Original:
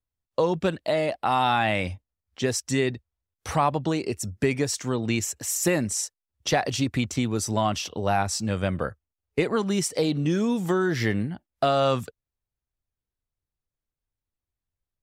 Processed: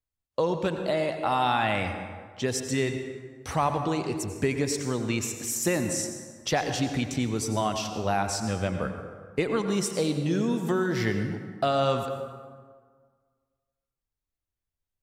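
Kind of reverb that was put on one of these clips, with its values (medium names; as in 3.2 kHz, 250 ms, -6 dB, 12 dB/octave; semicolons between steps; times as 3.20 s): plate-style reverb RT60 1.7 s, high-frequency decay 0.55×, pre-delay 75 ms, DRR 6.5 dB; trim -3 dB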